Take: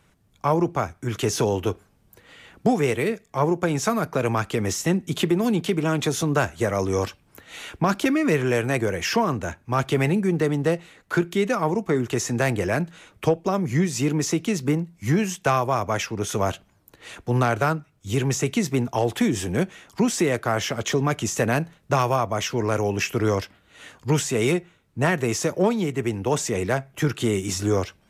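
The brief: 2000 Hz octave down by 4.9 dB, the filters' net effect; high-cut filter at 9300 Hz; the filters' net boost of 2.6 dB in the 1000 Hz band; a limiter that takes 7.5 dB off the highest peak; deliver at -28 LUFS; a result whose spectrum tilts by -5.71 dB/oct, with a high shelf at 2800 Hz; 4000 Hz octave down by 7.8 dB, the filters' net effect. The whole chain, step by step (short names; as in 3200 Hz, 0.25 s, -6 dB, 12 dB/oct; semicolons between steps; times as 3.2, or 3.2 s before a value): LPF 9300 Hz; bell 1000 Hz +5.5 dB; bell 2000 Hz -6 dB; high shelf 2800 Hz -3.5 dB; bell 4000 Hz -6 dB; gain -2 dB; limiter -16.5 dBFS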